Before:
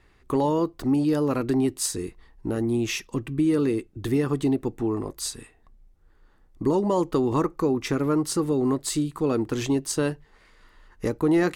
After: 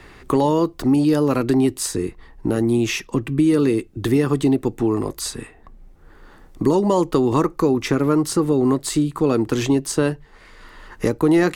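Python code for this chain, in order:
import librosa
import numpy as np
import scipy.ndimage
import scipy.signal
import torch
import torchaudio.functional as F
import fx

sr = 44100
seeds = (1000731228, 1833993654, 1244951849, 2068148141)

y = fx.band_squash(x, sr, depth_pct=40)
y = y * librosa.db_to_amplitude(5.5)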